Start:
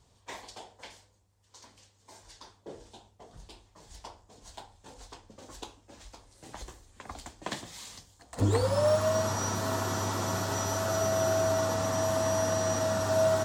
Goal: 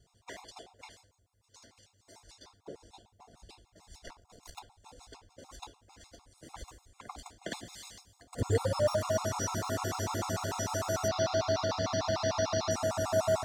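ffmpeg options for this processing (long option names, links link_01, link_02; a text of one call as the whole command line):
ffmpeg -i in.wav -filter_complex "[0:a]asettb=1/sr,asplit=3[link_01][link_02][link_03];[link_01]atrim=end=4.074[link_04];[link_02]atrim=start=4.07:end=4.59,asetpts=PTS-STARTPTS,afade=type=in:duration=0.004:curve=qsin,afade=type=out:start_time=0.516:duration=0.004:curve=qsin,aeval=exprs='0.0398*(cos(1*acos(clip(val(0)/0.0398,-1,1)))-cos(1*PI/2))+0.0141*(cos(6*acos(clip(val(0)/0.0398,-1,1)))-cos(6*PI/2))':channel_layout=same[link_05];[link_03]atrim=start=4.586[link_06];[link_04][link_05]acrossfade=duration=0.004:curve1=hsin:curve2=qsin[link_07];[link_07][link_06]acrossfade=duration=0.004:curve1=qsin:curve2=hsin,asettb=1/sr,asplit=3[link_08][link_09][link_10];[link_08]atrim=end=11.084[link_11];[link_09]atrim=start=11.08:end=12.71,asetpts=PTS-STARTPTS,afade=type=in:duration=0.004:curve=qsin,afade=type=out:start_time=1.626:duration=0.004:curve=qsin,highshelf=frequency=6500:width_type=q:width=3:gain=-13.5[link_12];[link_10]atrim=start=12.706[link_13];[link_11][link_12]acrossfade=duration=0.004:curve1=hsin:curve2=qsin[link_14];[link_14][link_13]acrossfade=duration=0.004:curve1=qsin:curve2=hsin,afftfilt=real='re*gt(sin(2*PI*6.7*pts/sr)*(1-2*mod(floor(b*sr/1024/700),2)),0)':imag='im*gt(sin(2*PI*6.7*pts/sr)*(1-2*mod(floor(b*sr/1024/700),2)),0)':win_size=1024:overlap=0.75" out.wav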